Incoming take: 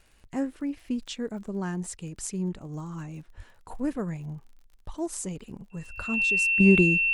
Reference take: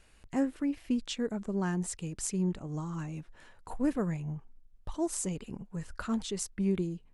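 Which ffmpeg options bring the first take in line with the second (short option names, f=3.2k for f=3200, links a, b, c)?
-filter_complex "[0:a]adeclick=t=4,bandreject=f=2.7k:w=30,asplit=3[a][b][c];[a]afade=t=out:st=3.36:d=0.02[d];[b]highpass=f=140:w=0.5412,highpass=f=140:w=1.3066,afade=t=in:st=3.36:d=0.02,afade=t=out:st=3.48:d=0.02[e];[c]afade=t=in:st=3.48:d=0.02[f];[d][e][f]amix=inputs=3:normalize=0,asplit=3[g][h][i];[g]afade=t=out:st=5.96:d=0.02[j];[h]highpass=f=140:w=0.5412,highpass=f=140:w=1.3066,afade=t=in:st=5.96:d=0.02,afade=t=out:st=6.08:d=0.02[k];[i]afade=t=in:st=6.08:d=0.02[l];[j][k][l]amix=inputs=3:normalize=0,asetnsamples=n=441:p=0,asendcmd='6.6 volume volume -11dB',volume=0dB"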